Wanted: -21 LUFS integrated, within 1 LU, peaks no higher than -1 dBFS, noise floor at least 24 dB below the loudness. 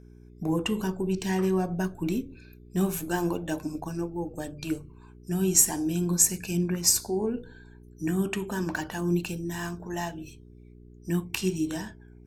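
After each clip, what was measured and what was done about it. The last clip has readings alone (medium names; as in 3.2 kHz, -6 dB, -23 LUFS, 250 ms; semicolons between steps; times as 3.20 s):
hum 60 Hz; highest harmonic 420 Hz; hum level -49 dBFS; loudness -28.0 LUFS; peak level -5.0 dBFS; loudness target -21.0 LUFS
-> de-hum 60 Hz, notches 7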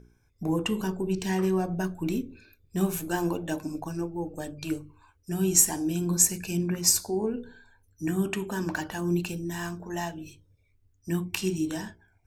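hum not found; loudness -28.0 LUFS; peak level -5.0 dBFS; loudness target -21.0 LUFS
-> trim +7 dB; peak limiter -1 dBFS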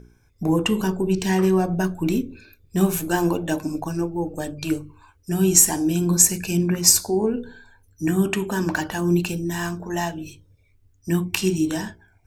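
loudness -21.5 LUFS; peak level -1.0 dBFS; noise floor -60 dBFS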